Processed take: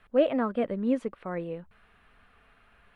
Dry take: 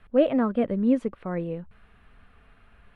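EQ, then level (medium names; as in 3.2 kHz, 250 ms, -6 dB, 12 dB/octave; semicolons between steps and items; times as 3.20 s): bass shelf 290 Hz -9.5 dB; 0.0 dB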